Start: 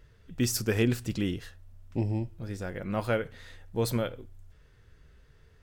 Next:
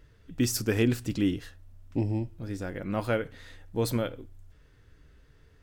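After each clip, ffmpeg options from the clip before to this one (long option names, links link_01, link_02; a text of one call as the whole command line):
ffmpeg -i in.wav -af "equalizer=frequency=290:width=7.2:gain=9.5" out.wav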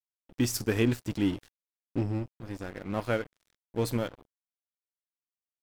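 ffmpeg -i in.wav -af "aeval=exprs='sgn(val(0))*max(abs(val(0))-0.01,0)':channel_layout=same" out.wav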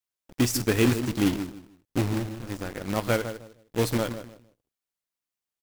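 ffmpeg -i in.wav -filter_complex "[0:a]asplit=2[link_01][link_02];[link_02]adelay=154,lowpass=frequency=1000:poles=1,volume=-9dB,asplit=2[link_03][link_04];[link_04]adelay=154,lowpass=frequency=1000:poles=1,volume=0.26,asplit=2[link_05][link_06];[link_06]adelay=154,lowpass=frequency=1000:poles=1,volume=0.26[link_07];[link_03][link_05][link_07]amix=inputs=3:normalize=0[link_08];[link_01][link_08]amix=inputs=2:normalize=0,acrusher=bits=2:mode=log:mix=0:aa=0.000001,volume=3.5dB" out.wav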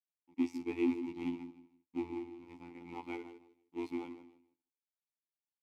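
ffmpeg -i in.wav -filter_complex "[0:a]afftfilt=real='hypot(re,im)*cos(PI*b)':imag='0':win_size=2048:overlap=0.75,asplit=3[link_01][link_02][link_03];[link_01]bandpass=frequency=300:width_type=q:width=8,volume=0dB[link_04];[link_02]bandpass=frequency=870:width_type=q:width=8,volume=-6dB[link_05];[link_03]bandpass=frequency=2240:width_type=q:width=8,volume=-9dB[link_06];[link_04][link_05][link_06]amix=inputs=3:normalize=0,volume=2dB" out.wav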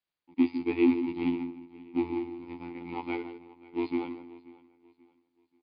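ffmpeg -i in.wav -af "aecho=1:1:534|1068|1602:0.0794|0.0286|0.0103,volume=9dB" -ar 11025 -c:a libmp3lame -b:a 64k out.mp3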